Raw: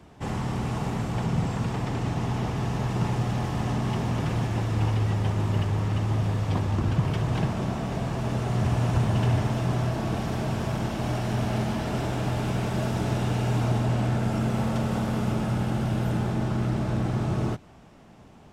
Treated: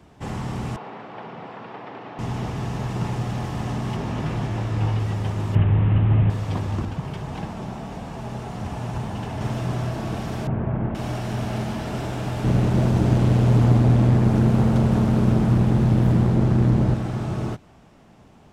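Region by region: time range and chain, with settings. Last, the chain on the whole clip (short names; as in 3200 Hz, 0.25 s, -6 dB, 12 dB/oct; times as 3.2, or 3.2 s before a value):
0.76–2.19 HPF 430 Hz + air absorption 340 m
3.96–4.99 high shelf 7000 Hz -7.5 dB + doubler 20 ms -6 dB
5.55–6.3 delta modulation 16 kbps, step -34 dBFS + low shelf 270 Hz +9.5 dB
6.85–9.41 bell 850 Hz +5 dB 0.31 oct + flange 1.7 Hz, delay 3.7 ms, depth 1.5 ms, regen -59%
10.47–10.95 LPF 2200 Hz 24 dB/oct + tilt shelf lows +4.5 dB, about 780 Hz
12.44–16.94 low shelf 450 Hz +10 dB + Doppler distortion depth 0.7 ms
whole clip: dry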